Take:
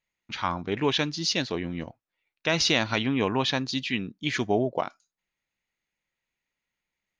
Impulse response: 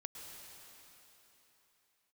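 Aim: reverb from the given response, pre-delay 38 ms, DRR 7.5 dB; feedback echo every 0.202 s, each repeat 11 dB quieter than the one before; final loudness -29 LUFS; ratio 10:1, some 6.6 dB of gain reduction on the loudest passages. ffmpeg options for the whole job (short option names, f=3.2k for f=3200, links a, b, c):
-filter_complex "[0:a]acompressor=threshold=-26dB:ratio=10,aecho=1:1:202|404|606:0.282|0.0789|0.0221,asplit=2[a][b];[1:a]atrim=start_sample=2205,adelay=38[c];[b][c]afir=irnorm=-1:irlink=0,volume=-4.5dB[d];[a][d]amix=inputs=2:normalize=0,volume=2dB"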